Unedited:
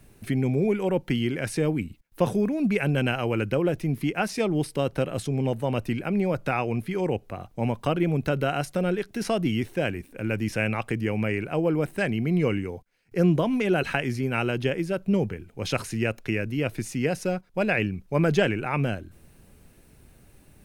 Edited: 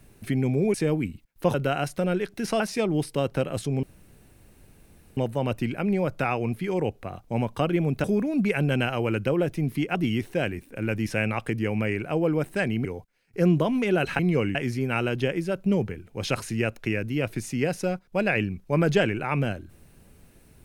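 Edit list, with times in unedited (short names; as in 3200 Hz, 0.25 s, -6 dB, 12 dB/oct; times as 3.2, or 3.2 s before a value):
0.74–1.5 cut
2.3–4.21 swap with 8.31–9.37
5.44 insert room tone 1.34 s
12.27–12.63 move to 13.97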